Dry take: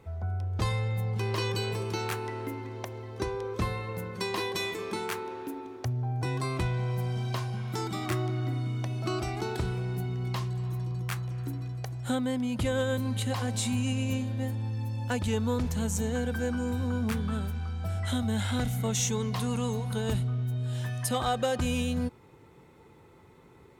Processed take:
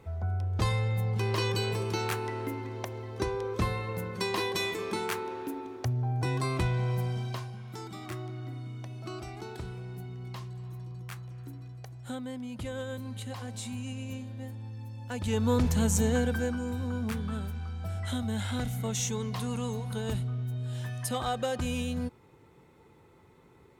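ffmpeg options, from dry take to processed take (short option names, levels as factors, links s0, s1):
-af "volume=4.73,afade=t=out:st=6.94:d=0.61:silence=0.334965,afade=t=in:st=15.09:d=0.5:silence=0.237137,afade=t=out:st=16.12:d=0.48:silence=0.446684"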